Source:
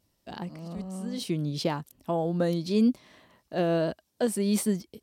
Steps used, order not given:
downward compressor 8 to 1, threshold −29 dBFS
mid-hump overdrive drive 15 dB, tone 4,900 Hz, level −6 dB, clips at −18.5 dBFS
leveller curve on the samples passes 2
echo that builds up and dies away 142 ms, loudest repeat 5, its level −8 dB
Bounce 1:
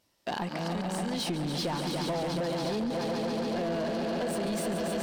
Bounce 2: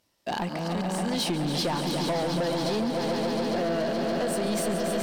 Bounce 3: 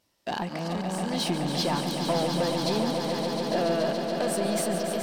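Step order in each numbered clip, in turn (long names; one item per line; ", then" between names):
echo that builds up and dies away, then leveller curve on the samples, then mid-hump overdrive, then downward compressor
mid-hump overdrive, then echo that builds up and dies away, then downward compressor, then leveller curve on the samples
leveller curve on the samples, then downward compressor, then mid-hump overdrive, then echo that builds up and dies away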